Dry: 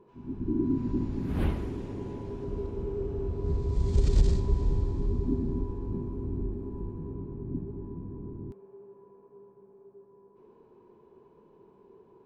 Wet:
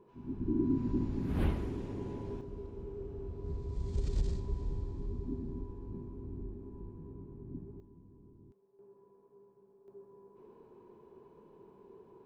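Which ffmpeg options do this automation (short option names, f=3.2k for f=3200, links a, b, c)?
-af "asetnsamples=n=441:p=0,asendcmd='2.41 volume volume -10dB;7.8 volume volume -18dB;8.79 volume volume -8dB;9.88 volume volume 0dB',volume=-3dB"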